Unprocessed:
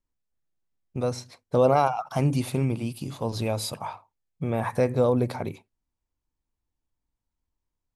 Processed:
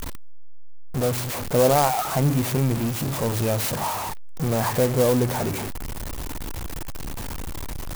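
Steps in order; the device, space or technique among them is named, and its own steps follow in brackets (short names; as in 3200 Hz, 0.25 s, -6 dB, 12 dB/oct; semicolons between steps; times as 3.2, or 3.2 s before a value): early CD player with a faulty converter (zero-crossing step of -23 dBFS; clock jitter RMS 0.071 ms)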